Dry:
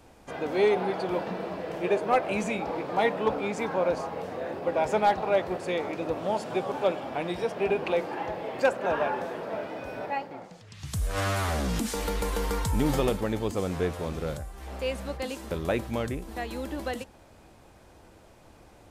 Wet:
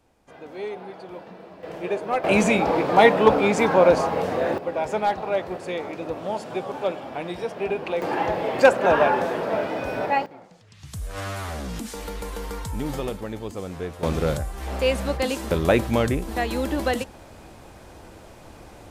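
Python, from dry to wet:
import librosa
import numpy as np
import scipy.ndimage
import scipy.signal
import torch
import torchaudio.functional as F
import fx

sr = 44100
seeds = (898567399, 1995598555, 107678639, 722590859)

y = fx.gain(x, sr, db=fx.steps((0.0, -9.5), (1.63, -1.0), (2.24, 10.5), (4.58, 0.0), (8.02, 9.0), (10.26, -3.5), (14.03, 9.0)))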